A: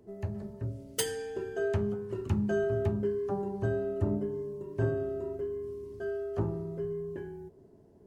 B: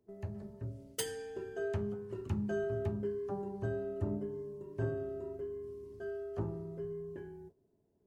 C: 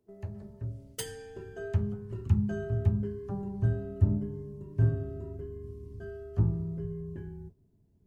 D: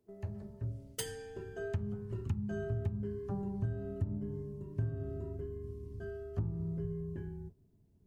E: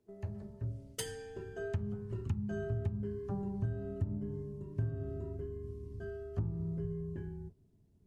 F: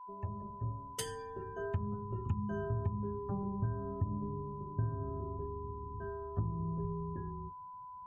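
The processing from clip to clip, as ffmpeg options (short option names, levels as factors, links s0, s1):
-af "agate=range=0.282:threshold=0.00398:ratio=16:detection=peak,volume=0.501"
-af "asubboost=boost=7.5:cutoff=170"
-af "acompressor=threshold=0.0316:ratio=8,volume=0.891"
-af "lowpass=12000"
-af "aeval=exprs='val(0)+0.00501*sin(2*PI*1000*n/s)':c=same,afftdn=nr=20:nf=-56"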